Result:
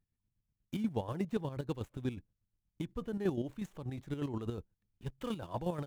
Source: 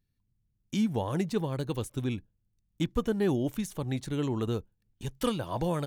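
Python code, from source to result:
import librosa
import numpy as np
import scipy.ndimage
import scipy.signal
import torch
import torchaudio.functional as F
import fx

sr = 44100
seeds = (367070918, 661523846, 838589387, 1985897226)

y = scipy.signal.medfilt(x, 9)
y = fx.chopper(y, sr, hz=8.3, depth_pct=60, duty_pct=35)
y = F.gain(torch.from_numpy(y), -3.5).numpy()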